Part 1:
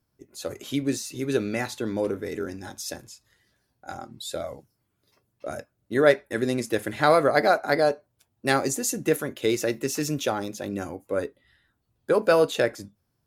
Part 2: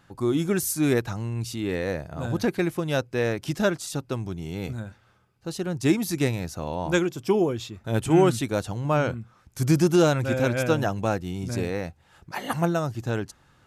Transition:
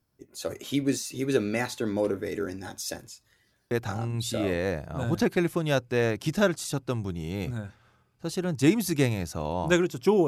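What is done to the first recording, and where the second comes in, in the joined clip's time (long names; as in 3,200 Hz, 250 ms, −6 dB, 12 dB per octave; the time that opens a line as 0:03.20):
part 1
0:04.41: continue with part 2 from 0:01.63, crossfade 1.40 s logarithmic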